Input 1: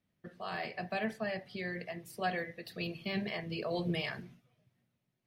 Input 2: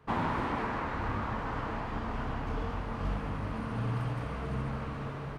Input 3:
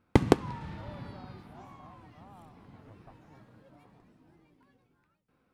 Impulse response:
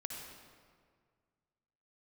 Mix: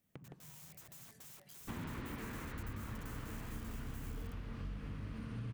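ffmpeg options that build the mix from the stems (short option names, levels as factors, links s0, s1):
-filter_complex "[0:a]alimiter=level_in=1.78:limit=0.0631:level=0:latency=1:release=333,volume=0.562,acompressor=threshold=0.00501:ratio=3,aeval=exprs='(mod(299*val(0)+1,2)-1)/299':c=same,volume=0.944,asplit=2[s0][s1];[s1]volume=0.0891[s2];[1:a]equalizer=f=820:w=0.88:g=-15,adelay=1600,volume=0.631[s3];[2:a]afwtdn=0.0112,equalizer=f=150:t=o:w=0.59:g=13.5,asoftclip=type=tanh:threshold=0.266,volume=0.106[s4];[s0][s4]amix=inputs=2:normalize=0,aexciter=amount=3.3:drive=4.2:freq=6200,acompressor=threshold=0.00224:ratio=4,volume=1[s5];[3:a]atrim=start_sample=2205[s6];[s2][s6]afir=irnorm=-1:irlink=0[s7];[s3][s5][s7]amix=inputs=3:normalize=0,acompressor=threshold=0.01:ratio=4"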